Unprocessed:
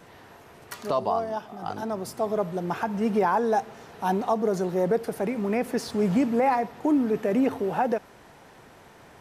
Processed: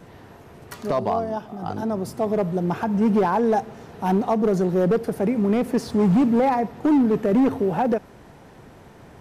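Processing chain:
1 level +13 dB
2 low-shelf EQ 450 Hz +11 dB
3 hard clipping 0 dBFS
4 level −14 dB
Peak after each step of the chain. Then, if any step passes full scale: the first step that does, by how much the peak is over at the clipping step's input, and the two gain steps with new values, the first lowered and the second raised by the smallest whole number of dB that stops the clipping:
−1.0, +7.0, 0.0, −14.0 dBFS
step 2, 7.0 dB
step 1 +6 dB, step 4 −7 dB

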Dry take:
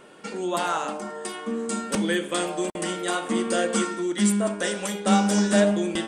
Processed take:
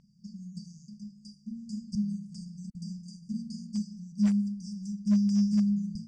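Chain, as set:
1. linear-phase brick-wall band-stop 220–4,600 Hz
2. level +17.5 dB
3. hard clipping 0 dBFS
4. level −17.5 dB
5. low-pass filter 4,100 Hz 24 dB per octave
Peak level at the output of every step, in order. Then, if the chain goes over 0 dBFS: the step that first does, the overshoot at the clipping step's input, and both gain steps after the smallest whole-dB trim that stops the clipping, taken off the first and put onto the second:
−11.0, +6.5, 0.0, −17.5, −17.5 dBFS
step 2, 6.5 dB
step 2 +10.5 dB, step 4 −10.5 dB

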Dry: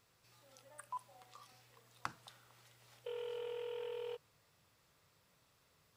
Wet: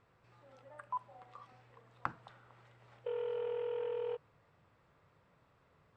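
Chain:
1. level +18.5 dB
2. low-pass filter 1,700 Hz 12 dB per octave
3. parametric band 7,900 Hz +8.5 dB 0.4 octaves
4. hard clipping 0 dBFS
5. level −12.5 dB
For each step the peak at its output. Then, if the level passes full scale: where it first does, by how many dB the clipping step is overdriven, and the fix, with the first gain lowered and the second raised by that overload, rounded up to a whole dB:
−5.0, −5.0, −5.0, −5.0, −17.5 dBFS
no step passes full scale

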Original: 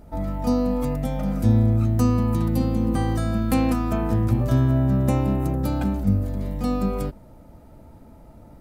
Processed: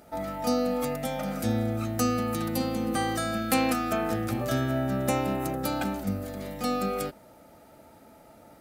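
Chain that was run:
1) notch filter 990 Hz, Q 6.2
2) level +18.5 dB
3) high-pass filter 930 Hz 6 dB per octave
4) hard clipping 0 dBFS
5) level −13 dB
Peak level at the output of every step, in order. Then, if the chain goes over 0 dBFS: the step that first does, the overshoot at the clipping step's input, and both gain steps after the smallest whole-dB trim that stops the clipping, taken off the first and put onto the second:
−7.0, +11.5, +7.0, 0.0, −13.0 dBFS
step 2, 7.0 dB
step 2 +11.5 dB, step 5 −6 dB

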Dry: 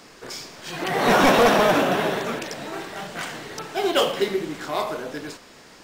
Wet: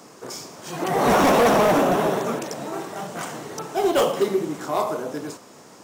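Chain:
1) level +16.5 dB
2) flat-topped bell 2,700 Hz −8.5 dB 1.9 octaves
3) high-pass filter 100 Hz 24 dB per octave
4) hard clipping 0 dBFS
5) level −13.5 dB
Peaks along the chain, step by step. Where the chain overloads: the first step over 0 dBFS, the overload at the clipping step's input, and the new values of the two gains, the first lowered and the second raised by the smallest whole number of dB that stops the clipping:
+5.5, +7.0, +9.5, 0.0, −13.5 dBFS
step 1, 9.5 dB
step 1 +6.5 dB, step 5 −3.5 dB

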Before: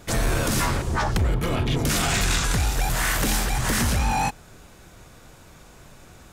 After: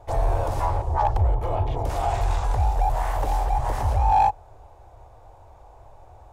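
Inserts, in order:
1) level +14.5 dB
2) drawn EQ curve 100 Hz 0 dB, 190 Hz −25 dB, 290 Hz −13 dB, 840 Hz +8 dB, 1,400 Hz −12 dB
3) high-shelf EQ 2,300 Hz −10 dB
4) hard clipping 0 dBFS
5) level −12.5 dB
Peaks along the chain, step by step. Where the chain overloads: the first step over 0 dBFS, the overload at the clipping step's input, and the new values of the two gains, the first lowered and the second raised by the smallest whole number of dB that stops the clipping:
−1.5, +4.0, +3.0, 0.0, −12.5 dBFS
step 2, 3.0 dB
step 1 +11.5 dB, step 5 −9.5 dB

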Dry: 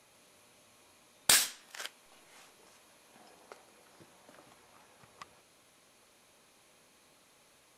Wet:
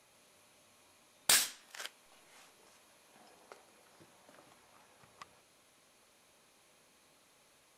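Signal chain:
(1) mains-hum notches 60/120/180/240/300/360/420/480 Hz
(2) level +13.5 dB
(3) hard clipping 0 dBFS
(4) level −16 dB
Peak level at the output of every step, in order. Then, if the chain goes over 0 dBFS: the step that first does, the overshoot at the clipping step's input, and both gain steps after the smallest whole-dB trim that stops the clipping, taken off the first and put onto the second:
−7.0, +6.5, 0.0, −16.0 dBFS
step 2, 6.5 dB
step 2 +6.5 dB, step 4 −9 dB

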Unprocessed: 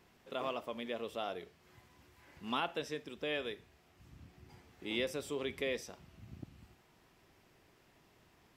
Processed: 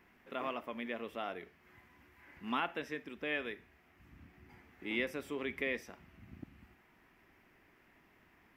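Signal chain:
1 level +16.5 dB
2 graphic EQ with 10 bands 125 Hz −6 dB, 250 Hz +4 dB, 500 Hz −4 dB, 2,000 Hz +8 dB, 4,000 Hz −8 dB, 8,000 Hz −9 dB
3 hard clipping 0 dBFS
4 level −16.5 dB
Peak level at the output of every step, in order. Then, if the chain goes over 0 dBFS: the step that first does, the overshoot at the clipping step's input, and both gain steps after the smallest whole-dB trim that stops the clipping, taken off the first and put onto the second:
−4.5, −3.0, −3.0, −19.5 dBFS
no step passes full scale

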